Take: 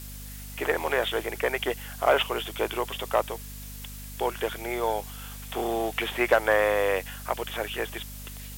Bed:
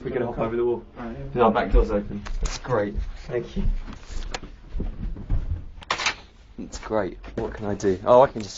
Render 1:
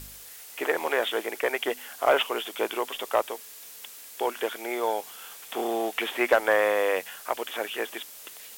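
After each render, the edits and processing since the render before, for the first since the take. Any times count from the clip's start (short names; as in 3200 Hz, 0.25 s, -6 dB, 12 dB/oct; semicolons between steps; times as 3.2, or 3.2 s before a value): de-hum 50 Hz, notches 5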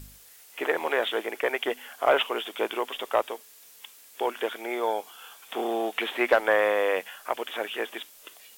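noise print and reduce 7 dB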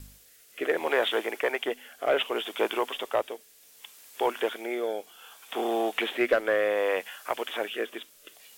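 rotary speaker horn 0.65 Hz; in parallel at -12 dB: hard clip -23 dBFS, distortion -12 dB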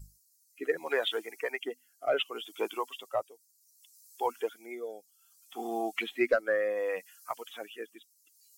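per-bin expansion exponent 2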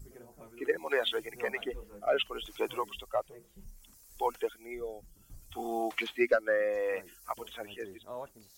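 add bed -27 dB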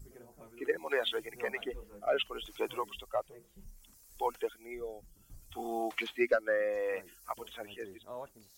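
gain -2 dB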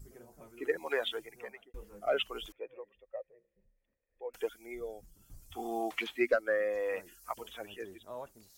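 0.88–1.74 fade out; 2.52–4.34 vocal tract filter e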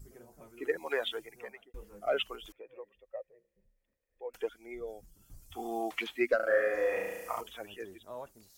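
2.35–2.77 compressor 5:1, threshold -44 dBFS; 4.37–4.88 high shelf 6200 Hz -11.5 dB; 6.36–7.41 flutter echo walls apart 6.1 m, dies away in 1.2 s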